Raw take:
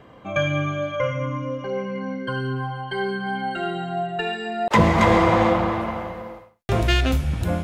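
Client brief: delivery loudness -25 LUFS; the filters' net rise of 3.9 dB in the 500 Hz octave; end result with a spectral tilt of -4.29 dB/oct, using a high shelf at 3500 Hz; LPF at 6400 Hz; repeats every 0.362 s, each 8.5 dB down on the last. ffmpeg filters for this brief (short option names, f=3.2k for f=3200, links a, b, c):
-af "lowpass=6.4k,equalizer=f=500:t=o:g=4.5,highshelf=f=3.5k:g=9,aecho=1:1:362|724|1086|1448:0.376|0.143|0.0543|0.0206,volume=-5dB"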